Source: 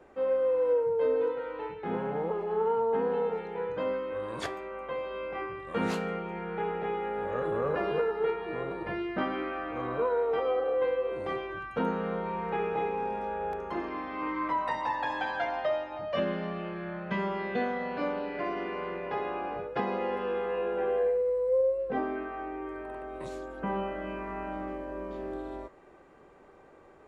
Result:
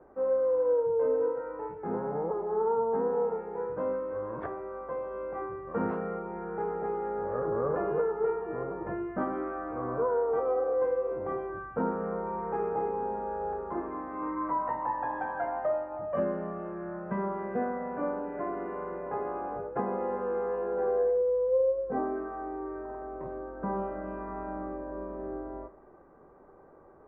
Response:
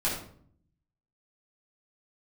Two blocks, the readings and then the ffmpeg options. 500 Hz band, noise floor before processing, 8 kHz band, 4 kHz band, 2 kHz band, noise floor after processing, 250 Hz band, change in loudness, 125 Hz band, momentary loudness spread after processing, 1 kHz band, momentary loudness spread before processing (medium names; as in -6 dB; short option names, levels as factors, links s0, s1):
+0.5 dB, -55 dBFS, no reading, under -25 dB, -7.5 dB, -55 dBFS, -0.5 dB, 0.0 dB, -1.5 dB, 11 LU, -0.5 dB, 10 LU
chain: -filter_complex "[0:a]lowpass=f=1400:w=0.5412,lowpass=f=1400:w=1.3066,asplit=2[s0][s1];[1:a]atrim=start_sample=2205,adelay=31[s2];[s1][s2]afir=irnorm=-1:irlink=0,volume=0.0631[s3];[s0][s3]amix=inputs=2:normalize=0"